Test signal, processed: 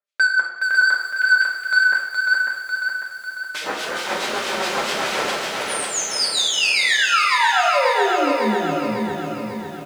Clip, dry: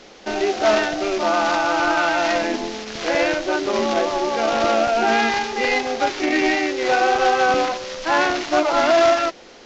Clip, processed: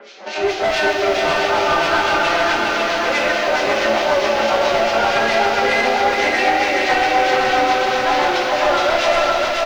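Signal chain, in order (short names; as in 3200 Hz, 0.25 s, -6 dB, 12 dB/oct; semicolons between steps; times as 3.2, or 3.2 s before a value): HPF 560 Hz 12 dB/oct; high shelf 4300 Hz -9.5 dB; in parallel at -2 dB: vocal rider within 4 dB 2 s; on the sum: flange 0.23 Hz, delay 4.9 ms, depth 4.5 ms, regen +36%; harmonic tremolo 4.6 Hz, depth 100%, crossover 2000 Hz; rotary speaker horn 7.5 Hz; soft clip -27 dBFS; air absorption 53 m; feedback echo 0.547 s, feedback 50%, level -4 dB; non-linear reverb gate 0.28 s falling, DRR -0.5 dB; maximiser +19 dB; lo-fi delay 0.418 s, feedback 35%, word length 6-bit, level -5 dB; gain -7.5 dB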